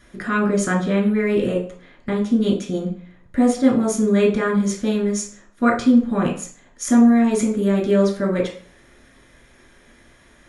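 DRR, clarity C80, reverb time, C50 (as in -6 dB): -2.0 dB, 12.5 dB, 0.45 s, 8.0 dB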